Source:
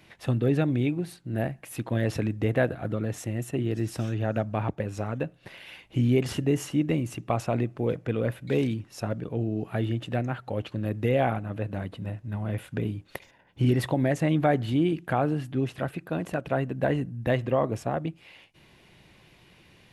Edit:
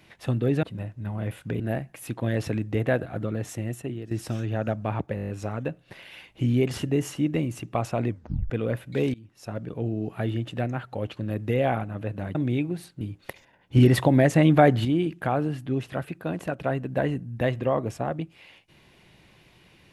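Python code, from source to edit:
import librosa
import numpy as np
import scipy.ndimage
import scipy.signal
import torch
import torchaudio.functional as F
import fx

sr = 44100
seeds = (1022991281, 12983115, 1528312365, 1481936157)

y = fx.edit(x, sr, fx.swap(start_s=0.63, length_s=0.66, other_s=11.9, other_length_s=0.97),
    fx.fade_out_to(start_s=3.36, length_s=0.44, floor_db=-13.5),
    fx.stutter(start_s=4.84, slice_s=0.02, count=8),
    fx.tape_stop(start_s=7.63, length_s=0.42),
    fx.fade_in_from(start_s=8.69, length_s=0.6, floor_db=-24.0),
    fx.clip_gain(start_s=13.62, length_s=1.09, db=6.0), tone=tone)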